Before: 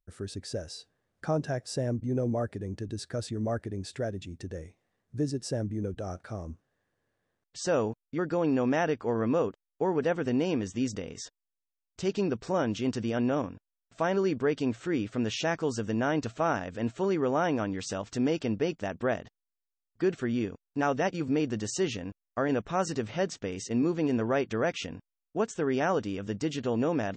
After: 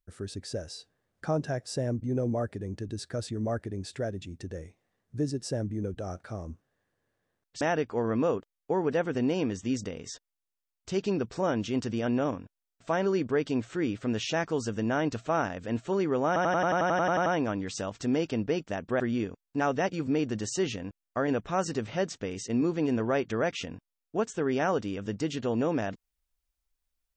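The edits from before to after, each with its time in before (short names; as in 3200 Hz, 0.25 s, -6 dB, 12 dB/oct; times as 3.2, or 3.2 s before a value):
7.61–8.72 cut
17.38 stutter 0.09 s, 12 plays
19.12–20.21 cut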